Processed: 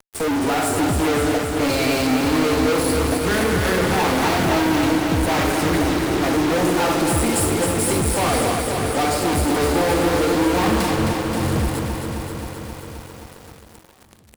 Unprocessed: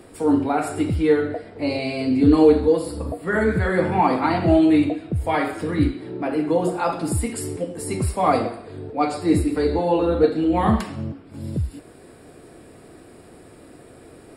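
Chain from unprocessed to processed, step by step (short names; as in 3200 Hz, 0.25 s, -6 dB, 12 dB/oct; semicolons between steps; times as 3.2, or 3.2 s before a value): high shelf 6500 Hz +6.5 dB; fuzz box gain 40 dB, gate -36 dBFS; on a send: feedback echo 0.661 s, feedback 60%, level -19 dB; on the sum: lo-fi delay 0.264 s, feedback 80%, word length 6-bit, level -5.5 dB; gain -6 dB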